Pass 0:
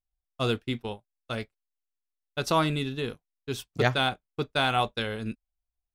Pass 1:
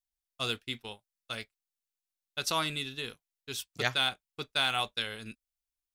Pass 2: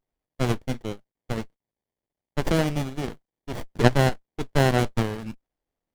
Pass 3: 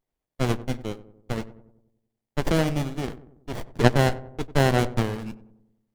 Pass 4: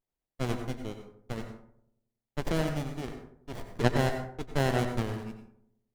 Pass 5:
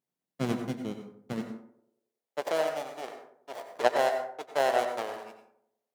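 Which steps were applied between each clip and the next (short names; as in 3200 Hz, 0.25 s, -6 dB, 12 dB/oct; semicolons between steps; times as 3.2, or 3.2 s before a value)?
tilt shelf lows -8 dB, about 1400 Hz; gain -4.5 dB
running maximum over 33 samples; gain +9 dB
darkening echo 94 ms, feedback 54%, low-pass 1100 Hz, level -14.5 dB
plate-style reverb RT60 0.52 s, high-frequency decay 0.55×, pre-delay 80 ms, DRR 6.5 dB; gain -7.5 dB
high-pass sweep 180 Hz -> 620 Hz, 1.34–2.52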